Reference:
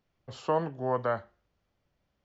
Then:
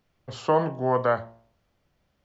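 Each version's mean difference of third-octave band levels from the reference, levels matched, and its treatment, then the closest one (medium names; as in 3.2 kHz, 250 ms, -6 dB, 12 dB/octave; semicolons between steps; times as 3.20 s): 1.0 dB: de-hum 57.14 Hz, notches 20; trim +6.5 dB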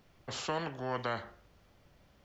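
8.5 dB: spectrum-flattening compressor 2:1; trim -6.5 dB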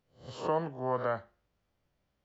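2.5 dB: reverse spectral sustain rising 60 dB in 0.37 s; trim -3 dB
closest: first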